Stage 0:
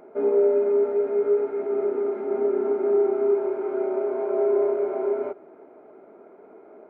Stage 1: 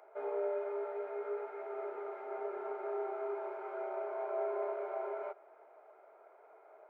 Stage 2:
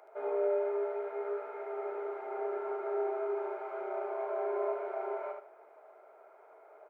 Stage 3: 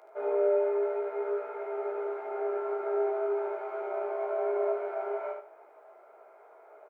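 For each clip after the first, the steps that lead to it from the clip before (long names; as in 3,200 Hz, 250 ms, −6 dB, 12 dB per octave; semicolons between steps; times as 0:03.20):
high-pass filter 600 Hz 24 dB per octave; level −5 dB
repeating echo 74 ms, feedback 23%, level −5 dB; level +1.5 dB
double-tracking delay 17 ms −4 dB; level +1 dB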